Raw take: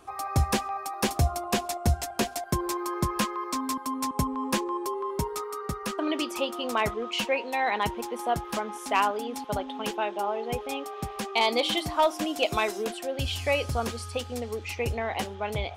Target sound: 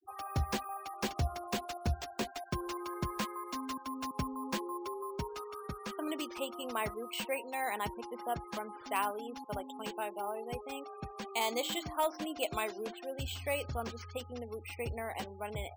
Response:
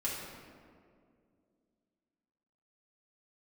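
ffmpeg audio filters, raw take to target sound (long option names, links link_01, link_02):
-af "acrusher=samples=4:mix=1:aa=0.000001,afftfilt=real='re*gte(hypot(re,im),0.0112)':imag='im*gte(hypot(re,im),0.0112)':win_size=1024:overlap=0.75,volume=-9dB"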